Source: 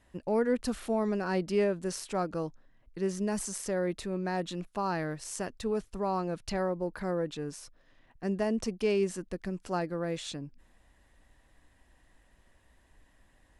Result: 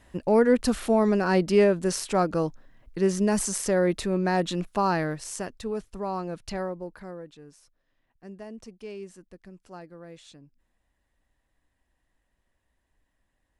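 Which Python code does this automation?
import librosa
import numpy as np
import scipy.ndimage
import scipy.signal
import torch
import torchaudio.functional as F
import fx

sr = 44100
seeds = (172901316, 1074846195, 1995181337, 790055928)

y = fx.gain(x, sr, db=fx.line((4.83, 8.0), (5.63, 0.0), (6.6, 0.0), (7.35, -11.5)))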